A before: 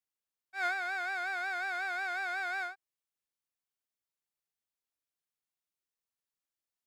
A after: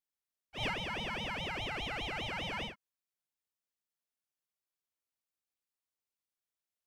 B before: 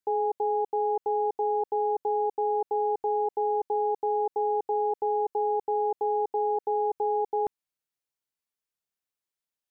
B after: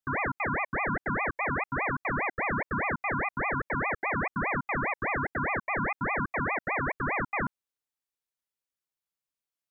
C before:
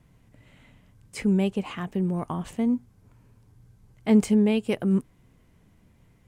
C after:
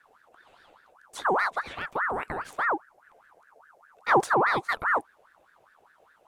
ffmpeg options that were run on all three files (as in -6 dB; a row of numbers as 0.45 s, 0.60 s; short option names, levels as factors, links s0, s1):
-af "aeval=exprs='val(0)*sin(2*PI*1100*n/s+1100*0.5/4.9*sin(2*PI*4.9*n/s))':c=same"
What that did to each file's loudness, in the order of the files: -3.0 LU, -2.0 LU, -1.5 LU